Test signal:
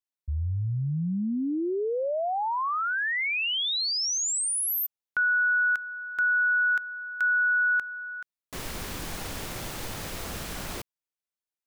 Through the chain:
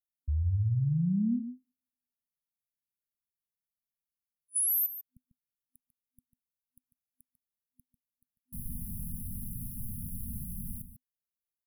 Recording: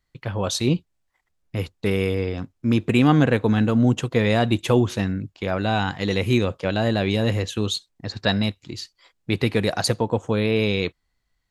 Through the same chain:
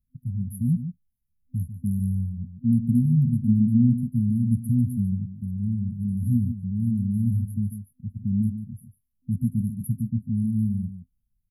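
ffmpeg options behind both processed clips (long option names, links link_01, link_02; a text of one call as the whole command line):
ffmpeg -i in.wav -filter_complex "[0:a]asplit=2[link_01][link_02];[link_02]adelay=145.8,volume=-10dB,highshelf=frequency=4000:gain=-3.28[link_03];[link_01][link_03]amix=inputs=2:normalize=0,afftfilt=real='re*(1-between(b*sr/4096,250,9800))':imag='im*(1-between(b*sr/4096,250,9800))':win_size=4096:overlap=0.75" out.wav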